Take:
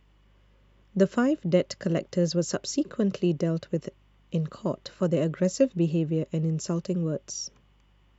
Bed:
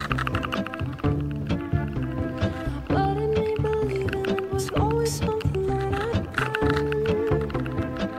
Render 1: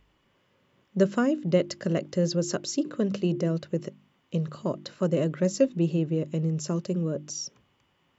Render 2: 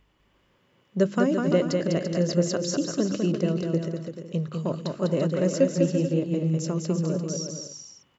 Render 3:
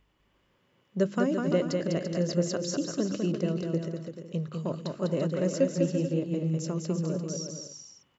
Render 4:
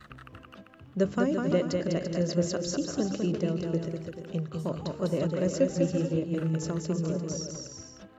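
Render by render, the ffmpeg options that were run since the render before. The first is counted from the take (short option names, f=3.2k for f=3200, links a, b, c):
-af "bandreject=f=50:t=h:w=4,bandreject=f=100:t=h:w=4,bandreject=f=150:t=h:w=4,bandreject=f=200:t=h:w=4,bandreject=f=250:t=h:w=4,bandreject=f=300:t=h:w=4,bandreject=f=350:t=h:w=4"
-af "aecho=1:1:200|340|438|506.6|554.6:0.631|0.398|0.251|0.158|0.1"
-af "volume=-4dB"
-filter_complex "[1:a]volume=-22dB[a];[0:a][a]amix=inputs=2:normalize=0"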